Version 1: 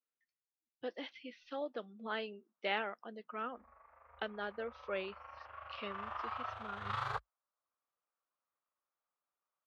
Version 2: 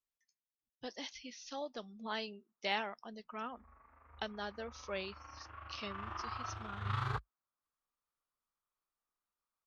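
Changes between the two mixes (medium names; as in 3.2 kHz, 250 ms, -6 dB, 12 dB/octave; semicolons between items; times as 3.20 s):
speech: remove cabinet simulation 190–3200 Hz, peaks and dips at 320 Hz +5 dB, 500 Hz +6 dB, 950 Hz -4 dB, 1.4 kHz +5 dB; background: add resonant low shelf 410 Hz +9.5 dB, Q 3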